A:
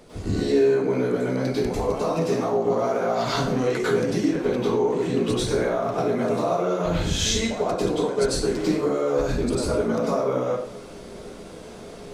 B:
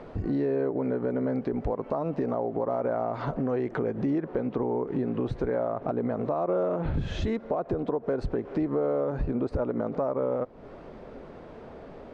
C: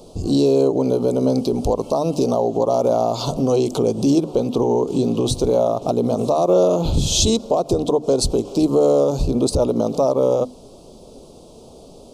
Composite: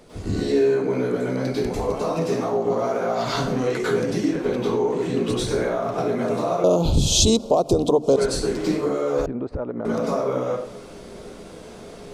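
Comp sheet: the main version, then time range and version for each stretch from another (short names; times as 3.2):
A
6.64–8.16 from C
9.26–9.85 from B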